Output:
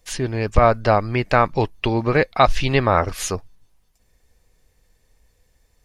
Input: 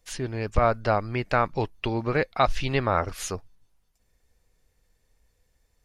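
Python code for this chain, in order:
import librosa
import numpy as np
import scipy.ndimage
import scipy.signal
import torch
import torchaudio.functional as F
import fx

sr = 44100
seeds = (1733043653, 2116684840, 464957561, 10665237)

y = fx.notch(x, sr, hz=1400.0, q=17.0)
y = y * 10.0 ** (7.0 / 20.0)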